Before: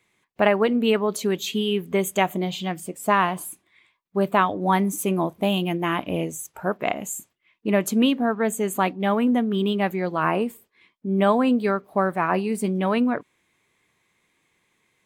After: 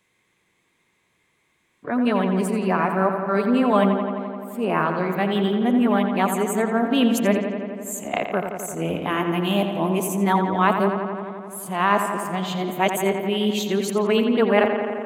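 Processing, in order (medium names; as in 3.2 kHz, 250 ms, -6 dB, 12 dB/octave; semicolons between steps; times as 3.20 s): reverse the whole clip; filtered feedback delay 86 ms, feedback 80%, low-pass 4.4 kHz, level -7.5 dB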